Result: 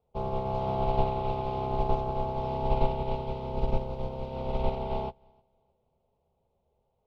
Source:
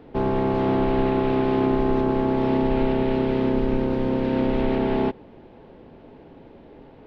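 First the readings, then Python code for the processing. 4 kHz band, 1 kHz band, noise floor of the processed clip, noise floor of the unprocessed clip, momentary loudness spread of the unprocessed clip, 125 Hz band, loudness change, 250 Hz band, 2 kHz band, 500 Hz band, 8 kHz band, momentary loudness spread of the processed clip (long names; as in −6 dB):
−7.5 dB, −3.0 dB, −76 dBFS, −47 dBFS, 2 LU, −5.0 dB, −9.0 dB, −17.0 dB, −15.0 dB, −9.5 dB, can't be measured, 7 LU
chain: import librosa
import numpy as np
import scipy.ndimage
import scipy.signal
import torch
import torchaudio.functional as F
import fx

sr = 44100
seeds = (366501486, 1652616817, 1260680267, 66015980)

p1 = fx.peak_eq(x, sr, hz=73.0, db=9.5, octaves=0.29)
p2 = fx.fixed_phaser(p1, sr, hz=710.0, stages=4)
p3 = p2 + fx.echo_feedback(p2, sr, ms=307, feedback_pct=35, wet_db=-12.5, dry=0)
p4 = fx.upward_expand(p3, sr, threshold_db=-39.0, expansion=2.5)
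y = F.gain(torch.from_numpy(p4), 3.0).numpy()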